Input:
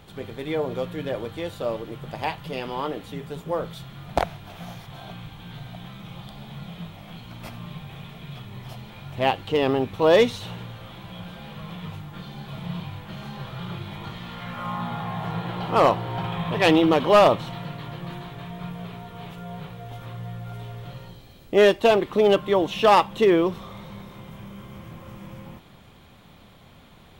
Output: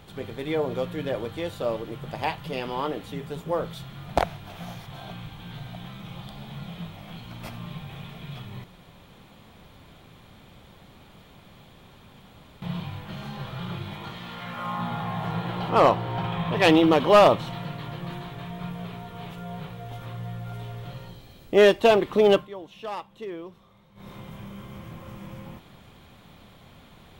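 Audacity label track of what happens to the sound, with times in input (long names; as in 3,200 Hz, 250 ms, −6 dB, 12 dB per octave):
8.640000	12.620000	fill with room tone
13.940000	14.790000	low-shelf EQ 120 Hz −9 dB
15.690000	16.570000	high-shelf EQ 6,300 Hz −4.5 dB
22.350000	24.080000	duck −18 dB, fades 0.13 s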